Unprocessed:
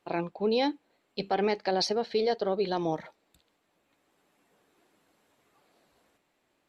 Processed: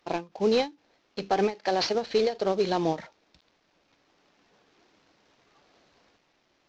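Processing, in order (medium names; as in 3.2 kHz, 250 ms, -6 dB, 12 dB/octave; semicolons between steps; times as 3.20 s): CVSD coder 32 kbps; 1.55–1.95 s: bass shelf 240 Hz -8.5 dB; endings held to a fixed fall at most 240 dB/s; trim +4 dB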